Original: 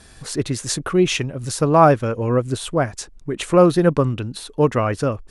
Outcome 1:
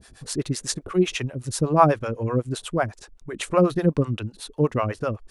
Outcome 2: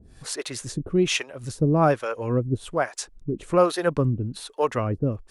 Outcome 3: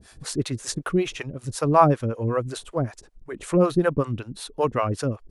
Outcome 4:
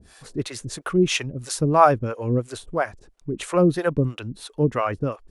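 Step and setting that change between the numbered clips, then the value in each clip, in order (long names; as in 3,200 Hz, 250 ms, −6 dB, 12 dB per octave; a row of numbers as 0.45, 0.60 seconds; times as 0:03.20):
two-band tremolo in antiphase, speed: 8, 1.2, 5.3, 3 Hertz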